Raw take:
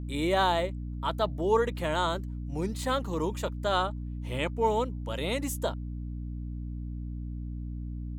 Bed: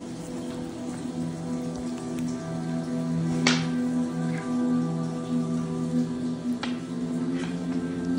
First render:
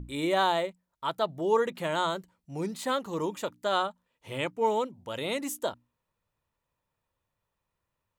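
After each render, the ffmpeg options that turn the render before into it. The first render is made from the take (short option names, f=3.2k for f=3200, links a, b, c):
-af "bandreject=f=60:t=h:w=6,bandreject=f=120:t=h:w=6,bandreject=f=180:t=h:w=6,bandreject=f=240:t=h:w=6,bandreject=f=300:t=h:w=6"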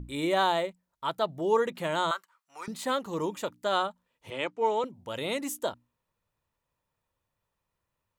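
-filter_complex "[0:a]asettb=1/sr,asplit=3[a][b][c];[a]atrim=end=2.114[d];[b]atrim=start=2.11:end=2.68,asetpts=PTS-STARTPTS,afade=t=in:d=0.004:c=qsin,afade=t=out:st=0.566:d=0.004:c=qsin,highpass=f=1.2k:t=q:w=3.9[e];[c]atrim=start=2.676[f];[d][e]acrossfade=d=0.004:c1=hsin:c2=qsin[g];[g][f]acrossfade=d=0.004:c1=qsin:c2=hsin,asettb=1/sr,asplit=3[h][i][j];[h]atrim=end=4.304[k];[i]atrim=start=4.3:end=4.84,asetpts=PTS-STARTPTS,afade=t=in:d=0.004:c=qsin,afade=t=out:st=0.536:d=0.004:c=qsin,acrossover=split=250 7500:gain=0.2 1 0.0794[l][m][n];[l][m][n]amix=inputs=3:normalize=0[o];[j]atrim=start=4.836[p];[k][o]acrossfade=d=0.004:c1=hsin:c2=qsin[q];[q][p]acrossfade=d=0.004:c1=qsin:c2=hsin"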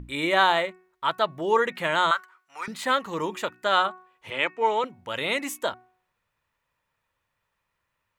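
-af "equalizer=f=1.9k:w=0.68:g=11,bandreject=f=369.2:t=h:w=4,bandreject=f=738.4:t=h:w=4,bandreject=f=1.1076k:t=h:w=4,bandreject=f=1.4768k:t=h:w=4,bandreject=f=1.846k:t=h:w=4,bandreject=f=2.2152k:t=h:w=4,bandreject=f=2.5844k:t=h:w=4"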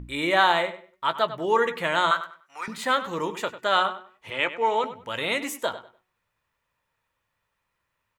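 -filter_complex "[0:a]asplit=2[a][b];[b]adelay=17,volume=-13dB[c];[a][c]amix=inputs=2:normalize=0,asplit=2[d][e];[e]adelay=98,lowpass=f=4.1k:p=1,volume=-13dB,asplit=2[f][g];[g]adelay=98,lowpass=f=4.1k:p=1,volume=0.25,asplit=2[h][i];[i]adelay=98,lowpass=f=4.1k:p=1,volume=0.25[j];[d][f][h][j]amix=inputs=4:normalize=0"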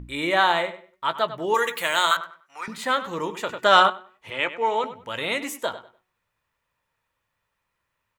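-filter_complex "[0:a]asettb=1/sr,asplit=3[a][b][c];[a]atrim=end=1.544[d];[b]atrim=start=1.54:end=2.17,asetpts=PTS-STARTPTS,afade=t=in:d=0.004:c=qsin,afade=t=out:st=0.626:d=0.004:c=qsin,aemphasis=mode=production:type=riaa[e];[c]atrim=start=2.166[f];[d][e]acrossfade=d=0.004:c1=hsin:c2=qsin[g];[g][f]acrossfade=d=0.004:c1=qsin:c2=hsin,asettb=1/sr,asplit=3[h][i][j];[h]atrim=end=3.494[k];[i]atrim=start=3.49:end=3.9,asetpts=PTS-STARTPTS,afade=t=in:d=0.004:c=qsin,afade=t=out:st=0.406:d=0.004:c=qsin,acontrast=87[l];[j]atrim=start=3.896[m];[k][l]acrossfade=d=0.004:c1=hsin:c2=qsin[n];[n][m]acrossfade=d=0.004:c1=qsin:c2=hsin"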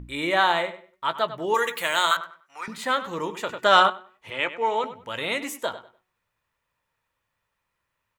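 -af "volume=-1dB"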